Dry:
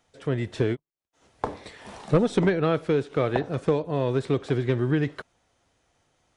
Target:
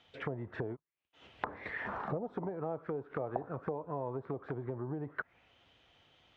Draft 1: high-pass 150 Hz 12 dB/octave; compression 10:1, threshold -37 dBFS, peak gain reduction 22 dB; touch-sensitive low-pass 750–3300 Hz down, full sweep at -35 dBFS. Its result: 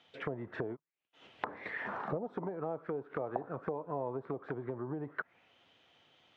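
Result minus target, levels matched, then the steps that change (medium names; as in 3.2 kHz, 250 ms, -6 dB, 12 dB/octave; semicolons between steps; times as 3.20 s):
125 Hz band -3.0 dB
change: high-pass 42 Hz 12 dB/octave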